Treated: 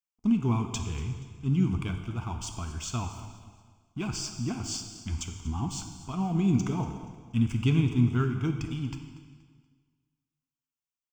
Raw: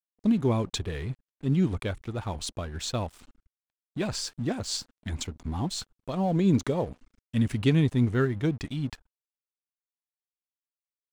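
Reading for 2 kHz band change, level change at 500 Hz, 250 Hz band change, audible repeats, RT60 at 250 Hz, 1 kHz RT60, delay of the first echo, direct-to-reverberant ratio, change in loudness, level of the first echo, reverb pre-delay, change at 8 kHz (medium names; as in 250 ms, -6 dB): -3.5 dB, -8.5 dB, -1.0 dB, 3, 1.7 s, 1.6 s, 238 ms, 5.0 dB, -1.0 dB, -16.5 dB, 4 ms, 0.0 dB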